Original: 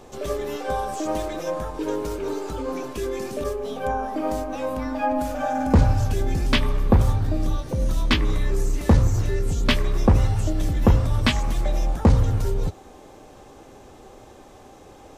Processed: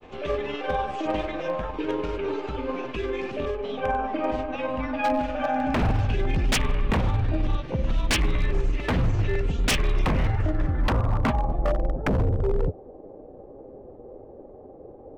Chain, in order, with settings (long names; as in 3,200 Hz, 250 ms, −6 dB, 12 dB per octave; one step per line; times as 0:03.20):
granular cloud 100 ms, grains 20 per second, spray 19 ms, pitch spread up and down by 0 semitones
low-pass filter sweep 2,700 Hz → 520 Hz, 0:10.02–0:11.90
wave folding −16 dBFS